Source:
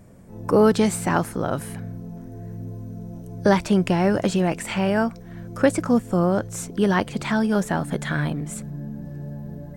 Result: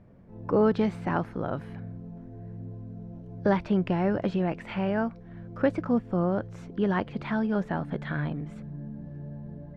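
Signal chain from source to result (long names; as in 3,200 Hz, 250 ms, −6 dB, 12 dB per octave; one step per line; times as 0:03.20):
high-frequency loss of the air 300 metres
level −5.5 dB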